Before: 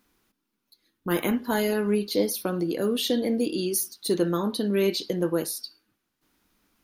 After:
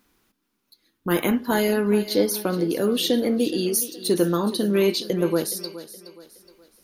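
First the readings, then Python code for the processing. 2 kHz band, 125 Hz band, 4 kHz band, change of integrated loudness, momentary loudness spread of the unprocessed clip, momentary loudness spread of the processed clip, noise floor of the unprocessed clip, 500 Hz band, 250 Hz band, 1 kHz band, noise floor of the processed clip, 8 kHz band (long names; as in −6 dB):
+3.5 dB, +3.5 dB, +3.5 dB, +3.5 dB, 4 LU, 7 LU, −80 dBFS, +3.5 dB, +3.5 dB, +3.5 dB, −75 dBFS, +3.5 dB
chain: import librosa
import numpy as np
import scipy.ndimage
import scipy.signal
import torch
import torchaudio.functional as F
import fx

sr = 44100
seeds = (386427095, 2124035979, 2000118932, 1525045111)

y = fx.echo_thinned(x, sr, ms=420, feedback_pct=40, hz=170.0, wet_db=-14.5)
y = y * librosa.db_to_amplitude(3.5)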